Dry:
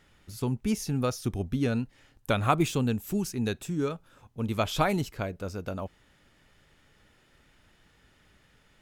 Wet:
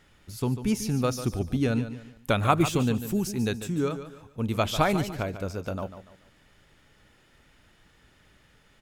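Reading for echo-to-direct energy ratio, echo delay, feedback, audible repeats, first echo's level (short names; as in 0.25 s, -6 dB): -11.0 dB, 0.145 s, 33%, 3, -11.5 dB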